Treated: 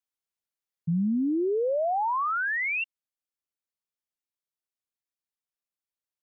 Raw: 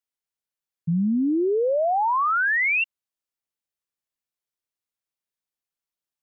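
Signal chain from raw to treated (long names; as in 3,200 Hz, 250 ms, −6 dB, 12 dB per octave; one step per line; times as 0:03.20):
speech leveller
level −4.5 dB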